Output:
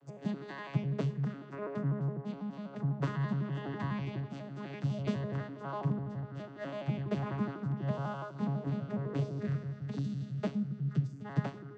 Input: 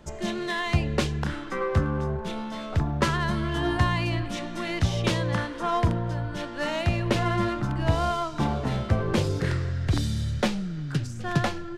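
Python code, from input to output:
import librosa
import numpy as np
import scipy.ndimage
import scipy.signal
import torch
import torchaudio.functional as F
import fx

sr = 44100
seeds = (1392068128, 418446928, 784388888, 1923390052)

y = fx.vocoder_arp(x, sr, chord='bare fifth', root=49, every_ms=83)
y = fx.room_shoebox(y, sr, seeds[0], volume_m3=3700.0, walls='furnished', distance_m=0.49)
y = F.gain(torch.from_numpy(y), -7.5).numpy()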